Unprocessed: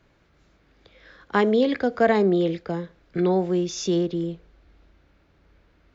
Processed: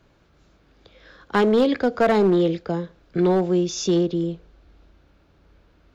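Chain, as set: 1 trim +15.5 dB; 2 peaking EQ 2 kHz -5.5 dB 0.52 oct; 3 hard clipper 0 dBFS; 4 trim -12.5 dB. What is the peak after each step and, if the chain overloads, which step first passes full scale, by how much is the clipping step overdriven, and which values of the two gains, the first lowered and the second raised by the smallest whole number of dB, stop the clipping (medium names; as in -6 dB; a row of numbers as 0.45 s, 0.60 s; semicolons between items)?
+8.0 dBFS, +7.5 dBFS, 0.0 dBFS, -12.5 dBFS; step 1, 7.5 dB; step 1 +7.5 dB, step 4 -4.5 dB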